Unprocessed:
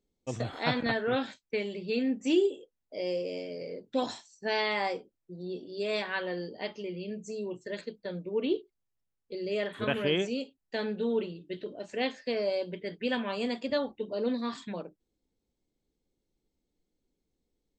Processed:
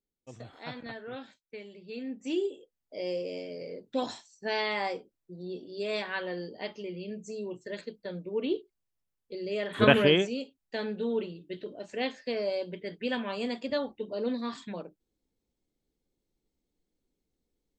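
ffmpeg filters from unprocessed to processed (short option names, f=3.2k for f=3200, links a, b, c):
-af "volume=11dB,afade=t=in:st=1.82:d=1.24:silence=0.281838,afade=t=in:st=9.68:d=0.15:silence=0.251189,afade=t=out:st=9.83:d=0.46:silence=0.251189"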